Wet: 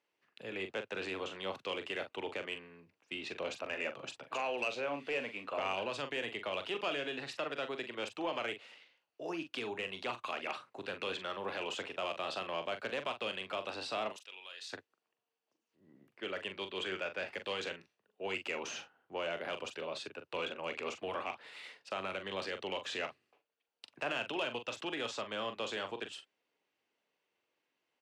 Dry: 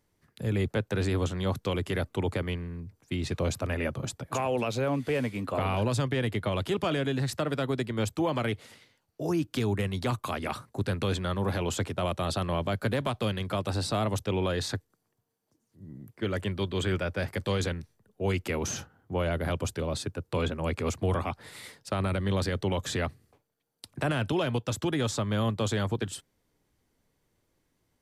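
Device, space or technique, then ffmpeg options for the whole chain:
intercom: -filter_complex "[0:a]asettb=1/sr,asplit=3[a][b][c];[a]atrim=end=14.124[d];[b]atrim=start=14.12:end=14.73,asetpts=PTS-STARTPTS,afade=t=in:d=0.004:c=qsin,afade=t=out:st=0.606:d=0.004:c=qsin,aderivative[e];[c]atrim=start=14.726[f];[d][e]acrossfade=d=0.004:c1=hsin:c2=qsin[g];[g][f]acrossfade=d=0.004:c1=qsin:c2=hsin,highpass=460,lowpass=4.5k,equalizer=f=2.7k:t=o:w=0.37:g=10,asoftclip=type=tanh:threshold=-19.5dB,asplit=2[h][i];[i]adelay=42,volume=-9dB[j];[h][j]amix=inputs=2:normalize=0,volume=-5.5dB"

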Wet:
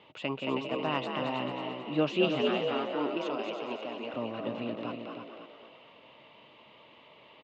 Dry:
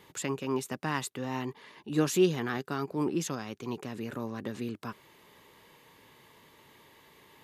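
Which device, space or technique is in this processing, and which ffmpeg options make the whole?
frequency-shifting delay pedal into a guitar cabinet: -filter_complex "[0:a]asettb=1/sr,asplit=3[a][b][c];[a]atrim=end=2.424[d];[b]atrim=start=2.42:end=4.14,asetpts=PTS-STARTPTS,afade=t=in:d=0.004:c=qsin,afade=t=out:st=1.716:d=0.004:c=qsin,highpass=290[e];[c]atrim=start=4.136[f];[d][e]acrossfade=d=0.004:c1=hsin:c2=qsin[g];[g][f]acrossfade=d=0.004:c1=qsin:c2=hsin,asplit=7[h][i][j][k][l][m][n];[i]adelay=222,afreqshift=57,volume=-5dB[o];[j]adelay=444,afreqshift=114,volume=-11.9dB[p];[k]adelay=666,afreqshift=171,volume=-18.9dB[q];[l]adelay=888,afreqshift=228,volume=-25.8dB[r];[m]adelay=1110,afreqshift=285,volume=-32.7dB[s];[n]adelay=1332,afreqshift=342,volume=-39.7dB[t];[h][o][p][q][r][s][t]amix=inputs=7:normalize=0,highpass=96,equalizer=f=100:t=q:w=4:g=-7,equalizer=f=170:t=q:w=4:g=-6,equalizer=f=390:t=q:w=4:g=-5,equalizer=f=630:t=q:w=4:g=9,equalizer=f=1.7k:t=q:w=4:g=-10,equalizer=f=2.8k:t=q:w=4:g=8,lowpass=f=3.5k:w=0.5412,lowpass=f=3.5k:w=1.3066,aecho=1:1:319:0.447"

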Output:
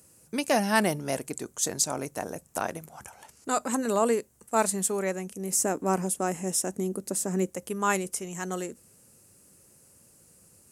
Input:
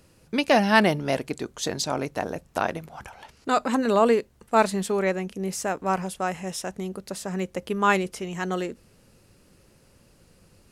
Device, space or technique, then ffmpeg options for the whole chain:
budget condenser microphone: -filter_complex "[0:a]asettb=1/sr,asplit=3[a][b][c];[a]atrim=end=5.524[d];[b]atrim=start=5.52:end=7.5,asetpts=PTS-STARTPTS,afade=t=in:d=0.004:c=qsin,afade=t=out:st=1.976:d=0.004:c=qsin,equalizer=f=290:t=o:w=1.4:g=11[e];[c]atrim=start=7.496[f];[d][e]acrossfade=d=0.004:c1=hsin:c2=qsin[g];[g][f]acrossfade=d=0.004:c1=qsin:c2=hsin,highpass=79,highshelf=f=5.6k:t=q:w=1.5:g=12.5,volume=-5dB"

